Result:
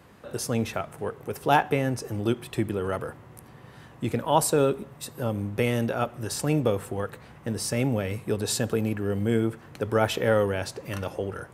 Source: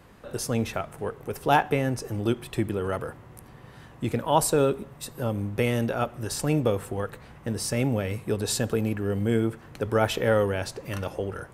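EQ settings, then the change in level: high-pass 71 Hz; 0.0 dB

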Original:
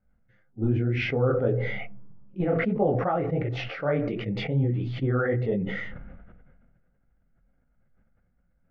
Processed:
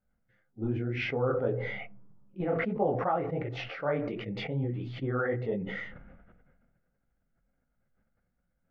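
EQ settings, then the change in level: dynamic bell 960 Hz, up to +6 dB, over -46 dBFS, Q 2.7; bass shelf 170 Hz -6.5 dB; -4.0 dB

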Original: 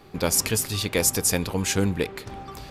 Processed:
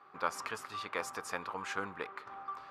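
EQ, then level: band-pass filter 1.2 kHz, Q 4.1; +3.5 dB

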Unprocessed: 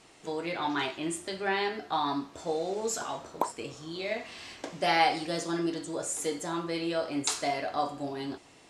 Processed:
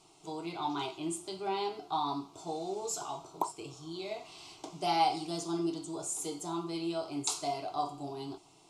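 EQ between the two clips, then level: static phaser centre 350 Hz, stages 8; -2.0 dB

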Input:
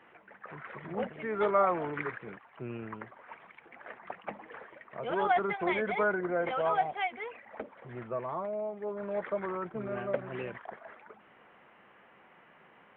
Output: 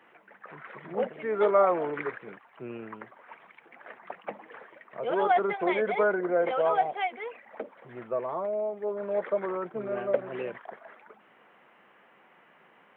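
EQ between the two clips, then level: dynamic bell 500 Hz, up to +7 dB, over -44 dBFS, Q 1.2; high-pass 150 Hz 12 dB/octave; tone controls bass -1 dB, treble +4 dB; 0.0 dB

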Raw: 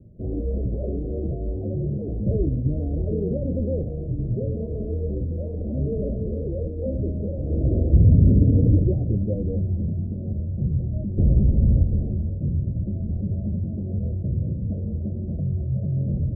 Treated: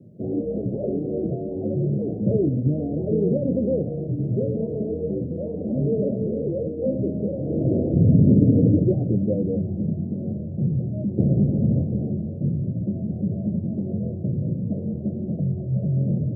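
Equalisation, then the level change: high-pass 130 Hz 24 dB/octave; +5.0 dB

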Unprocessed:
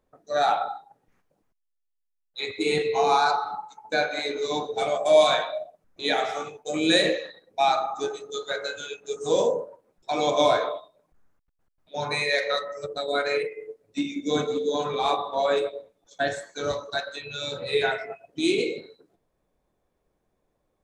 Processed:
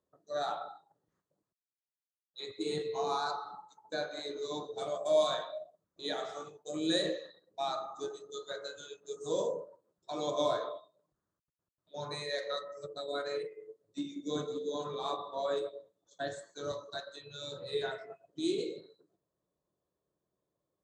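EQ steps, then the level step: cabinet simulation 120–8200 Hz, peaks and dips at 240 Hz -9 dB, 470 Hz -4 dB, 790 Hz -10 dB, 1.5 kHz -5 dB, 2.2 kHz -6 dB, 5.5 kHz -6 dB; peaking EQ 2.5 kHz -12 dB 0.71 oct; -6.5 dB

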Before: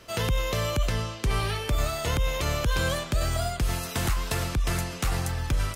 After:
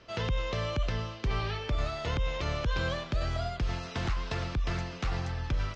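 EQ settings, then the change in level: inverse Chebyshev low-pass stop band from 12 kHz, stop band 50 dB; distance through air 59 m; -4.5 dB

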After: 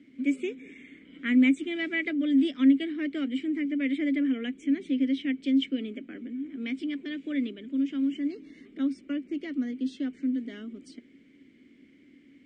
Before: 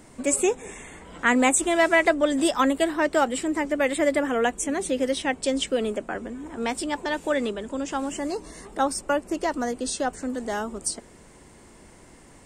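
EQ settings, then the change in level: vowel filter i; distance through air 86 m; +5.5 dB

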